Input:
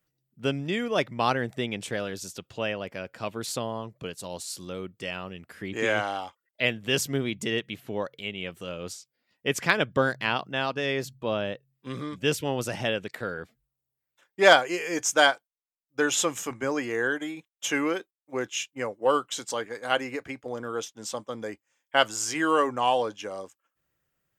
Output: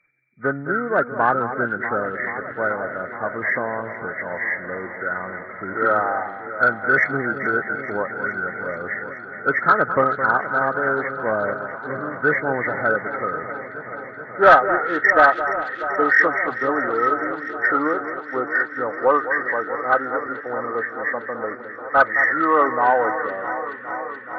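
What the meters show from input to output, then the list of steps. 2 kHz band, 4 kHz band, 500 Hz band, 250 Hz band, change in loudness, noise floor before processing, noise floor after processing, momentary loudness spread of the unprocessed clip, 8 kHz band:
+10.0 dB, -15.5 dB, +5.5 dB, +3.0 dB, +7.0 dB, -85 dBFS, -36 dBFS, 14 LU, under -25 dB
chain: nonlinear frequency compression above 1200 Hz 4:1; overdrive pedal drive 11 dB, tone 1900 Hz, clips at -3 dBFS; echo with dull and thin repeats by turns 0.214 s, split 1800 Hz, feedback 89%, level -11 dB; gain +3 dB

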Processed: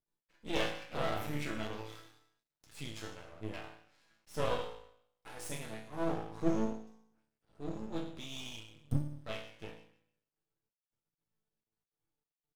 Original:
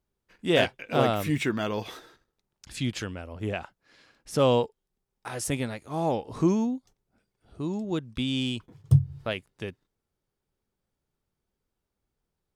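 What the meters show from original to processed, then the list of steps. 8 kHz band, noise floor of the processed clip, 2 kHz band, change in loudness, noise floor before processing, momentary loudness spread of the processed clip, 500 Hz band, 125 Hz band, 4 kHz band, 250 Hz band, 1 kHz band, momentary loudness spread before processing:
-10.0 dB, under -85 dBFS, -10.0 dB, -11.5 dB, -84 dBFS, 17 LU, -11.5 dB, -14.0 dB, -10.5 dB, -11.0 dB, -10.0 dB, 14 LU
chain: resonator bank A2 sus4, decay 0.69 s; half-wave rectifier; gain +11 dB

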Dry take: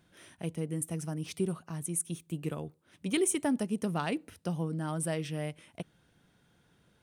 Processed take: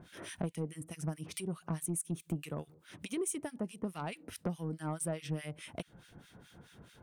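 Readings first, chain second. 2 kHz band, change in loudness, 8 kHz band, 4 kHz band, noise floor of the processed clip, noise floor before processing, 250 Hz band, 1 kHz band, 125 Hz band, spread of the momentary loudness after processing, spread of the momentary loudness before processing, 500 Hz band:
-5.5 dB, -5.5 dB, -5.0 dB, -5.5 dB, -64 dBFS, -69 dBFS, -5.5 dB, -5.0 dB, -3.5 dB, 21 LU, 13 LU, -5.5 dB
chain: compressor 16:1, threshold -43 dBFS, peak gain reduction 20 dB; harmonic tremolo 4.7 Hz, depth 100%, crossover 1400 Hz; soft clip -40 dBFS, distortion -18 dB; gain +14 dB

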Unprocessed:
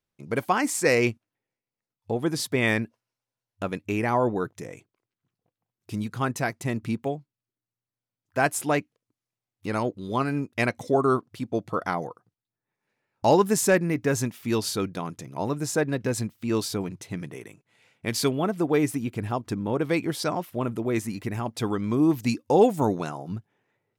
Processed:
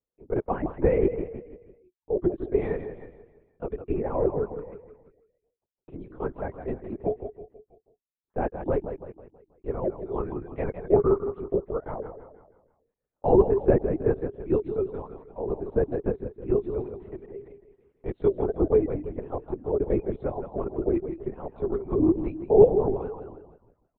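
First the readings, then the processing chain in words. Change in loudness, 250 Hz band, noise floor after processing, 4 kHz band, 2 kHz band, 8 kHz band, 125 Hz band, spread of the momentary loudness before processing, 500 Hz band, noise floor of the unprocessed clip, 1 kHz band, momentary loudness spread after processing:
-0.5 dB, -3.0 dB, under -85 dBFS, under -30 dB, -17.0 dB, under -40 dB, -3.5 dB, 13 LU, +2.5 dB, under -85 dBFS, -7.0 dB, 18 LU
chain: reverb removal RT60 1 s; dynamic EQ 330 Hz, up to +4 dB, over -41 dBFS, Q 3.4; ladder band-pass 460 Hz, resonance 55%; on a send: feedback echo 0.163 s, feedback 44%, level -9 dB; on the sum: LPC vocoder at 8 kHz whisper; gain +7.5 dB

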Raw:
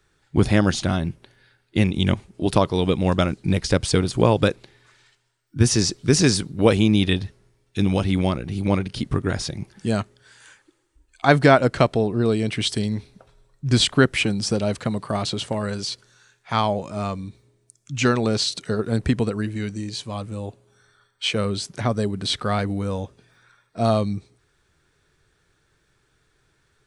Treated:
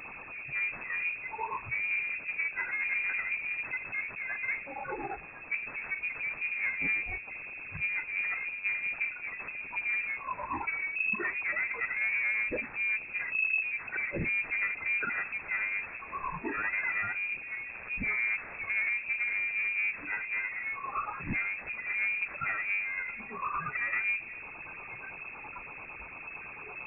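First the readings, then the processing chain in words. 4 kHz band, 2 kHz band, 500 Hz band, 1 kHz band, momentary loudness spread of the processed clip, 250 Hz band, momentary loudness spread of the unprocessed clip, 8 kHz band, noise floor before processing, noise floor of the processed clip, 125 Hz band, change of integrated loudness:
under -30 dB, +2.0 dB, -24.5 dB, -11.0 dB, 11 LU, -25.5 dB, 13 LU, under -40 dB, -67 dBFS, -45 dBFS, -28.0 dB, -9.5 dB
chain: infinite clipping; de-hum 96.31 Hz, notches 7; spectral noise reduction 19 dB; LFO notch sine 8.9 Hz 590–1800 Hz; one-sided clip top -37 dBFS; inverted band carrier 2600 Hz

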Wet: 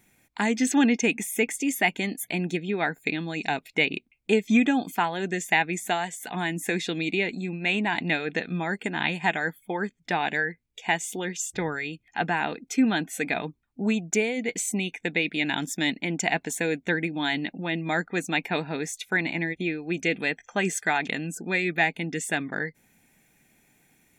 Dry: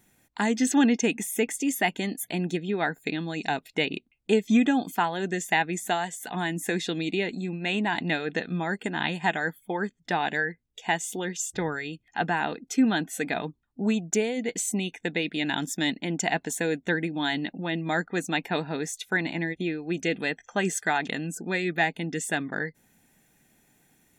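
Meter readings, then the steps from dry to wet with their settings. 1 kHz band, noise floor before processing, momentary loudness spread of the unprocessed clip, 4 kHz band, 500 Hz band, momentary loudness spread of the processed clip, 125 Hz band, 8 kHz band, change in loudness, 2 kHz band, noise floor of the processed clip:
0.0 dB, -69 dBFS, 7 LU, +0.5 dB, 0.0 dB, 7 LU, 0.0 dB, 0.0 dB, +1.0 dB, +2.5 dB, -68 dBFS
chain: bell 2300 Hz +9.5 dB 0.25 oct

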